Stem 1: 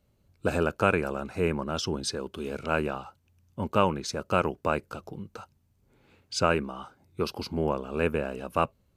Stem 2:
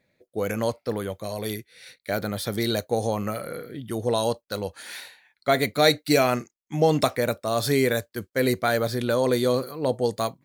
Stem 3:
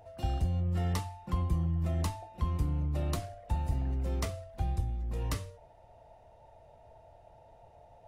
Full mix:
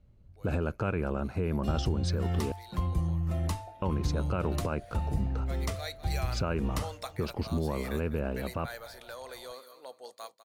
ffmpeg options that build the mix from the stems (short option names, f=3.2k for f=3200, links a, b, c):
-filter_complex "[0:a]aemphasis=mode=reproduction:type=bsi,volume=-2dB,asplit=3[a][b][c];[a]atrim=end=2.52,asetpts=PTS-STARTPTS,afade=t=out:st=2.516:d=0.004:c=hsin[d];[b]atrim=start=2.52:end=3.82,asetpts=PTS-STARTPTS,volume=0[e];[c]atrim=start=3.82,asetpts=PTS-STARTPTS,afade=t=in:d=0.004:c=hsin[f];[d][e][f]concat=n=3:v=0:a=1[g];[1:a]highpass=790,volume=-14.5dB,afade=t=in:st=5.56:d=0.69:silence=0.375837,asplit=2[h][i];[i]volume=-12.5dB[j];[2:a]adelay=1450,volume=0.5dB[k];[j]aecho=0:1:202|404|606|808:1|0.26|0.0676|0.0176[l];[g][h][k][l]amix=inputs=4:normalize=0,alimiter=limit=-19.5dB:level=0:latency=1:release=73"